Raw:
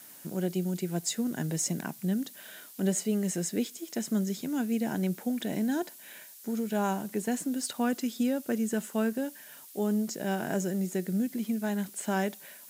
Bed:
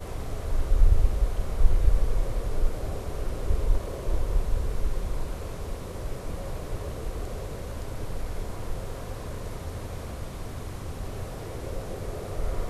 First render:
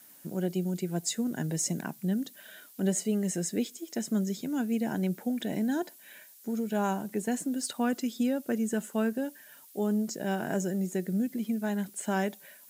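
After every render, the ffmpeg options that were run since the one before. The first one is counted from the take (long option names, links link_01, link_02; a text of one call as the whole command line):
ffmpeg -i in.wav -af "afftdn=noise_reduction=6:noise_floor=-50" out.wav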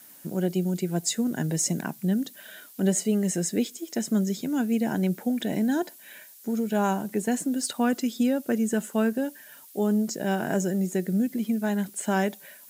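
ffmpeg -i in.wav -af "volume=4.5dB" out.wav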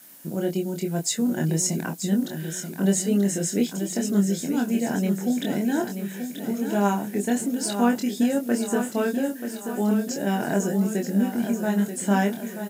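ffmpeg -i in.wav -filter_complex "[0:a]asplit=2[link_01][link_02];[link_02]adelay=25,volume=-3.5dB[link_03];[link_01][link_03]amix=inputs=2:normalize=0,asplit=2[link_04][link_05];[link_05]aecho=0:1:933|1866|2799|3732|4665|5598:0.376|0.195|0.102|0.0528|0.0275|0.0143[link_06];[link_04][link_06]amix=inputs=2:normalize=0" out.wav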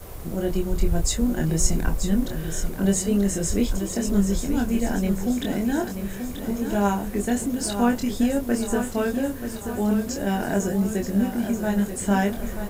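ffmpeg -i in.wav -i bed.wav -filter_complex "[1:a]volume=-4dB[link_01];[0:a][link_01]amix=inputs=2:normalize=0" out.wav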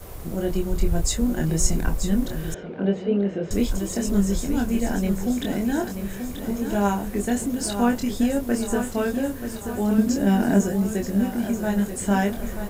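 ffmpeg -i in.wav -filter_complex "[0:a]asettb=1/sr,asplit=3[link_01][link_02][link_03];[link_01]atrim=end=2.544[link_04];[link_02]atrim=start=2.54:end=3.51,asetpts=PTS-STARTPTS,afade=type=in:duration=0.004:curve=qsin,afade=type=out:start_time=0.966:duration=0.004:curve=qsin,highpass=180,equalizer=frequency=470:width_type=q:width=4:gain=6,equalizer=frequency=1100:width_type=q:width=4:gain=-6,equalizer=frequency=1900:width_type=q:width=4:gain=-6,lowpass=frequency=2900:width=0.5412,lowpass=frequency=2900:width=1.3066[link_05];[link_03]atrim=start=3.506[link_06];[link_04][link_05]acrossfade=duration=0.004:curve1=hsin:curve2=qsin[link_07];[link_07][link_06]acrossfade=duration=0.004:curve1=qsin:curve2=hsin,asettb=1/sr,asplit=3[link_08][link_09][link_10];[link_08]atrim=end=9.984[link_11];[link_09]atrim=start=9.98:end=10.62,asetpts=PTS-STARTPTS,afade=type=in:duration=0.004:curve=qsin,afade=type=out:start_time=0.636:duration=0.004:curve=qsin,equalizer=frequency=240:width_type=o:width=0.77:gain=10.5[link_12];[link_10]atrim=start=10.616[link_13];[link_11][link_12]acrossfade=duration=0.004:curve1=hsin:curve2=qsin[link_14];[link_14][link_13]acrossfade=duration=0.004:curve1=qsin:curve2=hsin" out.wav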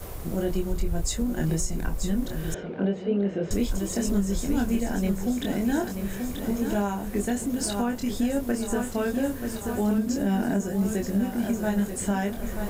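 ffmpeg -i in.wav -af "alimiter=limit=-16dB:level=0:latency=1:release=361,areverse,acompressor=mode=upward:threshold=-30dB:ratio=2.5,areverse" out.wav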